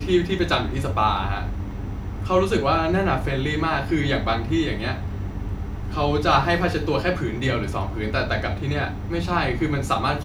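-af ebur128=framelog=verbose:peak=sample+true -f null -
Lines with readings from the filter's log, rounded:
Integrated loudness:
  I:         -23.4 LUFS
  Threshold: -33.4 LUFS
Loudness range:
  LRA:         1.8 LU
  Threshold: -43.3 LUFS
  LRA low:   -24.4 LUFS
  LRA high:  -22.6 LUFS
Sample peak:
  Peak:       -3.2 dBFS
True peak:
  Peak:       -3.2 dBFS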